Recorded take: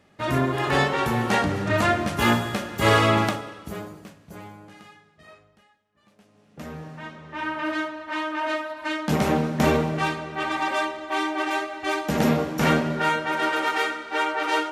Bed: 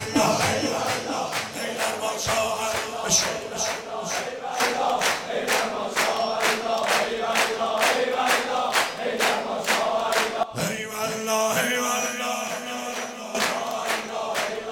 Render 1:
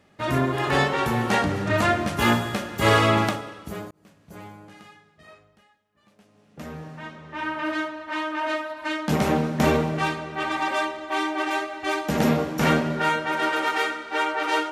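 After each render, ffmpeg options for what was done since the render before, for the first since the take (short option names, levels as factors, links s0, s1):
-filter_complex "[0:a]asplit=2[s0][s1];[s0]atrim=end=3.91,asetpts=PTS-STARTPTS,afade=t=out:st=3.906:d=0.004:c=hsin[s2];[s1]atrim=start=3.91,asetpts=PTS-STARTPTS,afade=t=in:d=0.51[s3];[s2][s3]concat=n=2:v=0:a=1"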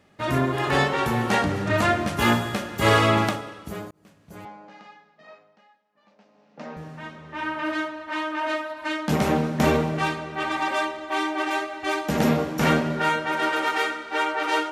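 -filter_complex "[0:a]asettb=1/sr,asplit=3[s0][s1][s2];[s0]atrim=end=4.454[s3];[s1]atrim=start=4.45:end=6.77,asetpts=PTS-STARTPTS,afade=t=in:d=0.004:c=qsin,afade=t=out:st=2.316:d=0.004:c=qsin,highpass=f=190:w=0.5412,highpass=f=190:w=1.3066,equalizer=f=360:t=q:w=4:g=-7,equalizer=f=570:t=q:w=4:g=5,equalizer=f=870:t=q:w=4:g=6,equalizer=f=3300:t=q:w=4:g=-4,lowpass=f=5500:w=0.5412,lowpass=f=5500:w=1.3066[s4];[s2]atrim=start=6.766[s5];[s3][s4]acrossfade=d=0.004:c1=hsin:c2=qsin[s6];[s6][s5]acrossfade=d=0.004:c1=qsin:c2=hsin"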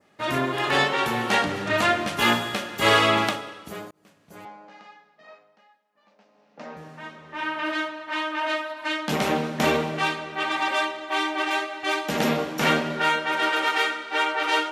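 -af "highpass=f=290:p=1,adynamicequalizer=threshold=0.00891:dfrequency=3200:dqfactor=1.1:tfrequency=3200:tqfactor=1.1:attack=5:release=100:ratio=0.375:range=2.5:mode=boostabove:tftype=bell"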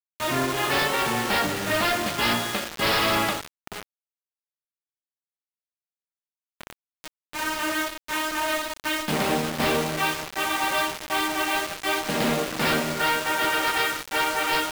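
-af "aresample=11025,aeval=exprs='0.141*(abs(mod(val(0)/0.141+3,4)-2)-1)':c=same,aresample=44100,acrusher=bits=4:mix=0:aa=0.000001"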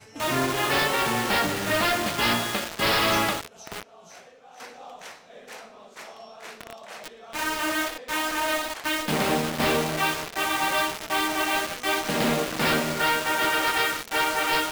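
-filter_complex "[1:a]volume=0.106[s0];[0:a][s0]amix=inputs=2:normalize=0"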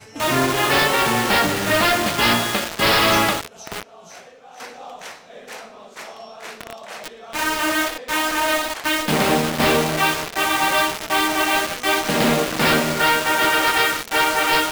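-af "volume=2"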